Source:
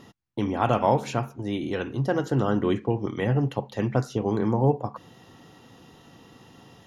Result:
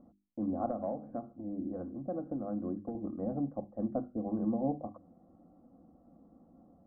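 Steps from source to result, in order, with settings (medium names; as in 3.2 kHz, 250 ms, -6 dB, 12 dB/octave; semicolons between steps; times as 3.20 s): steep low-pass 990 Hz 36 dB/octave; bass shelf 360 Hz +5.5 dB; hum notches 50/100/150/200/250/300/350 Hz; 0.68–2.95 s: compression 5:1, threshold -21 dBFS, peak gain reduction 7.5 dB; static phaser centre 620 Hz, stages 8; trim -7.5 dB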